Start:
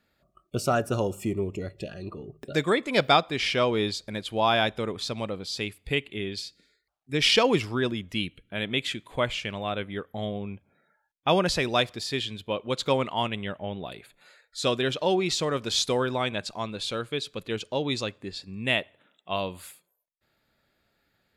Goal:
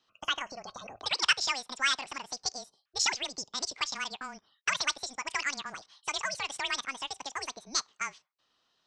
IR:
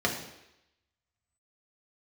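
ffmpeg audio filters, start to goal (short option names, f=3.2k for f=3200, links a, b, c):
-filter_complex "[0:a]highpass=f=150:t=q:w=0.5412,highpass=f=150:t=q:w=1.307,lowpass=f=2.6k:t=q:w=0.5176,lowpass=f=2.6k:t=q:w=0.7071,lowpass=f=2.6k:t=q:w=1.932,afreqshift=-110,acrossover=split=630[a][b];[a]acompressor=threshold=-38dB:ratio=6[c];[c][b]amix=inputs=2:normalize=0,lowshelf=f=210:g=-10.5,asetrate=106281,aresample=44100,volume=1dB"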